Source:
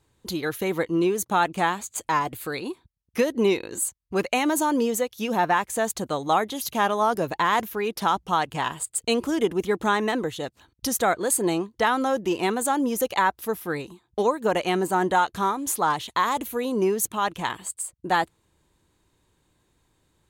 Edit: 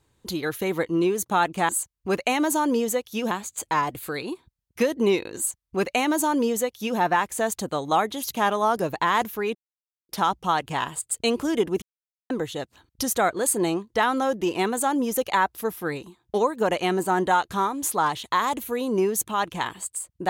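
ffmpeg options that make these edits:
-filter_complex "[0:a]asplit=6[s0][s1][s2][s3][s4][s5];[s0]atrim=end=1.692[s6];[s1]atrim=start=3.748:end=5.372[s7];[s2]atrim=start=1.688:end=7.93,asetpts=PTS-STARTPTS,afade=t=out:st=6.238:d=0.004:c=hsin,apad=pad_dur=0.54[s8];[s3]atrim=start=7.93:end=9.66,asetpts=PTS-STARTPTS,afade=t=in:d=0.004:c=hsin,afade=t=out:st=1.726:d=0.004:c=hsin[s9];[s4]atrim=start=9.66:end=10.14,asetpts=PTS-STARTPTS,volume=0[s10];[s5]atrim=start=10.14,asetpts=PTS-STARTPTS,afade=t=in:d=0.004:c=hsin[s11];[s6][s7]acrossfade=d=0.004:c1=hsin:c2=hsin[s12];[s8][s9][s10][s11]concat=n=4:v=0:a=1[s13];[s12][s13]acrossfade=d=0.004:c1=hsin:c2=hsin"

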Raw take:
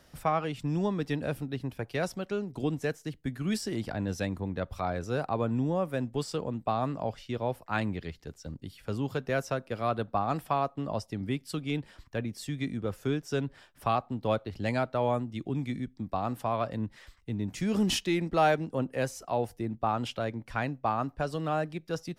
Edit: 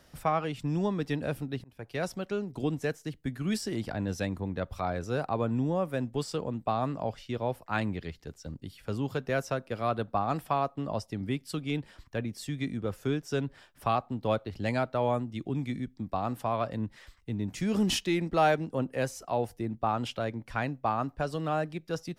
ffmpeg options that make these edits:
-filter_complex "[0:a]asplit=2[s0][s1];[s0]atrim=end=1.64,asetpts=PTS-STARTPTS,afade=t=out:st=1.636:d=0.004:c=hsin[s2];[s1]atrim=start=1.64,asetpts=PTS-STARTPTS,afade=t=in:d=0.59:c=qsin[s3];[s2][s3]concat=n=2:v=0:a=1"

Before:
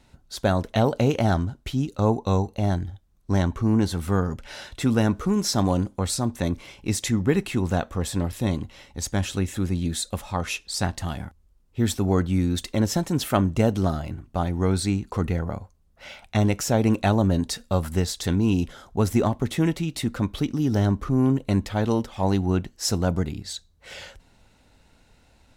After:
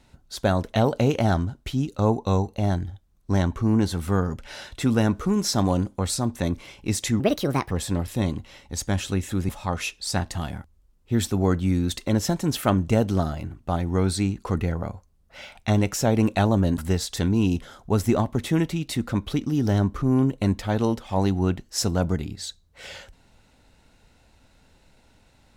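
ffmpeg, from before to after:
-filter_complex "[0:a]asplit=5[s0][s1][s2][s3][s4];[s0]atrim=end=7.204[s5];[s1]atrim=start=7.2:end=7.96,asetpts=PTS-STARTPTS,asetrate=65709,aresample=44100[s6];[s2]atrim=start=7.956:end=9.742[s7];[s3]atrim=start=10.158:end=17.452[s8];[s4]atrim=start=17.848[s9];[s5][s6]acrossfade=d=0.004:c1=hsin:c2=hsin[s10];[s10][s7]acrossfade=d=0.004:c1=hsin:c2=hsin[s11];[s11][s8]acrossfade=d=0.004:c1=hsin:c2=hsin[s12];[s12][s9]acrossfade=d=0.004:c1=hsin:c2=hsin"

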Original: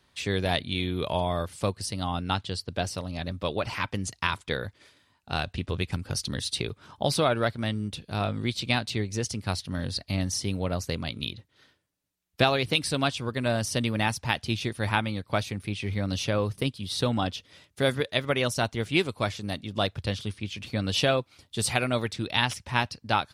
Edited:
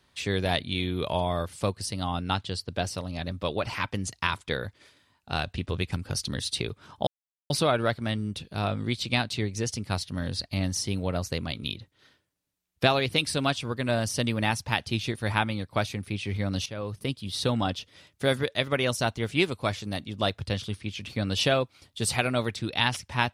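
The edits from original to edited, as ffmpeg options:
-filter_complex "[0:a]asplit=3[s0][s1][s2];[s0]atrim=end=7.07,asetpts=PTS-STARTPTS,afade=t=out:st=7.066:d=0.004:c=hsin,apad=pad_dur=0.43[s3];[s1]atrim=start=7.07:end=16.23,asetpts=PTS-STARTPTS,afade=t=in:d=0.004:c=hsin,afade=t=out:st=9.156:d=0.004:c=hsin:silence=0.199526[s4];[s2]atrim=start=16.23,asetpts=PTS-STARTPTS,afade=t=in:d=0.6:silence=0.199526[s5];[s3][s4][s5]concat=n=3:v=0:a=1"

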